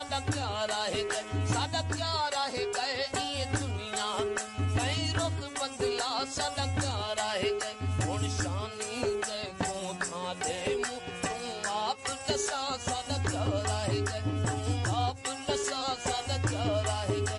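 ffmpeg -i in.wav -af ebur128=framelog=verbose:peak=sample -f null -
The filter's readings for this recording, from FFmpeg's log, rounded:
Integrated loudness:
  I:         -31.5 LUFS
  Threshold: -41.5 LUFS
Loudness range:
  LRA:         2.0 LU
  Threshold: -51.6 LUFS
  LRA low:   -33.0 LUFS
  LRA high:  -30.9 LUFS
Sample peak:
  Peak:      -16.4 dBFS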